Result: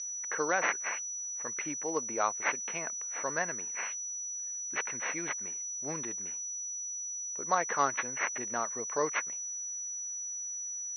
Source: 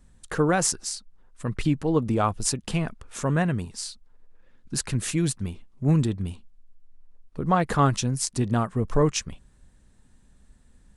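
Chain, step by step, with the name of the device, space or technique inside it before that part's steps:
toy sound module (linearly interpolated sample-rate reduction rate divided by 6×; switching amplifier with a slow clock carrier 5,900 Hz; loudspeaker in its box 730–4,900 Hz, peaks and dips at 770 Hz −4 dB, 1,200 Hz −4 dB, 2,100 Hz +5 dB, 3,300 Hz −4 dB)

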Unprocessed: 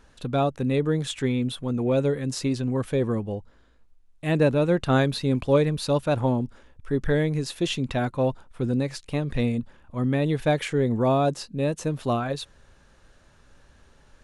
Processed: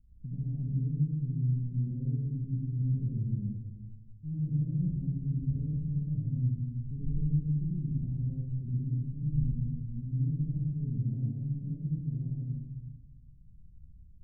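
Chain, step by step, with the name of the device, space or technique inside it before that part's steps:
club heard from the street (brickwall limiter −20 dBFS, peak gain reduction 10.5 dB; low-pass filter 170 Hz 24 dB per octave; convolution reverb RT60 1.3 s, pre-delay 58 ms, DRR −7 dB)
level −5 dB

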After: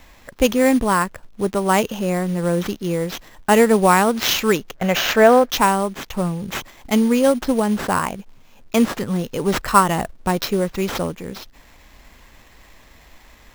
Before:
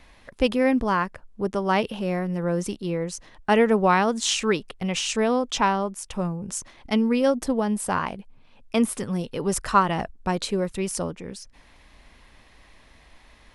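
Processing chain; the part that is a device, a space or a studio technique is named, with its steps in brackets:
early companding sampler (sample-rate reduction 9,400 Hz, jitter 0%; log-companded quantiser 6 bits)
0:04.76–0:05.50: graphic EQ with 15 bands 630 Hz +11 dB, 1,600 Hz +11 dB, 10,000 Hz −5 dB
level +5 dB

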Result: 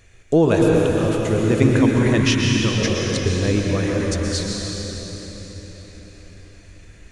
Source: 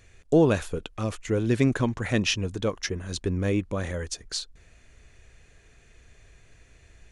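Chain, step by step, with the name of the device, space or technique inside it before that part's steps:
cathedral (convolution reverb RT60 4.4 s, pre-delay 111 ms, DRR −2 dB)
0:02.22–0:02.71: flat-topped bell 600 Hz −10 dB 1 octave
level +3.5 dB

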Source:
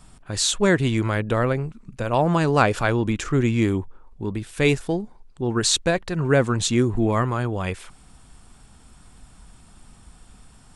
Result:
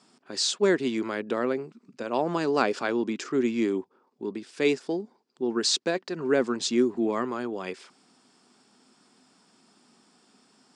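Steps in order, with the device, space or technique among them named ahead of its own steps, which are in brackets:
television speaker (loudspeaker in its box 210–8,000 Hz, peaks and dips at 250 Hz +5 dB, 390 Hz +7 dB, 4,900 Hz +9 dB)
level −7 dB

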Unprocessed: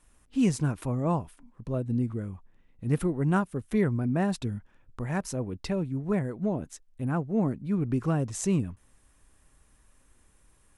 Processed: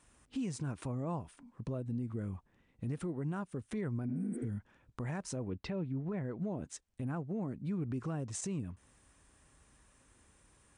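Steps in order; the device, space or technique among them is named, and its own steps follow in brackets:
0:04.11–0:04.43: healed spectral selection 220–7,900 Hz both
0:05.48–0:06.40: low-pass filter 3,700 Hz 12 dB per octave
podcast mastering chain (high-pass filter 60 Hz 12 dB per octave; downward compressor 4 to 1, threshold −34 dBFS, peak gain reduction 12 dB; brickwall limiter −30.5 dBFS, peak gain reduction 9.5 dB; level +1 dB; MP3 96 kbit/s 22,050 Hz)

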